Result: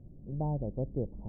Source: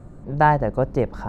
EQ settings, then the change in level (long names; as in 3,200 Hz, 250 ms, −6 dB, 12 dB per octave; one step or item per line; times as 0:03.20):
Gaussian smoothing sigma 16 samples
high-frequency loss of the air 420 metres
−8.5 dB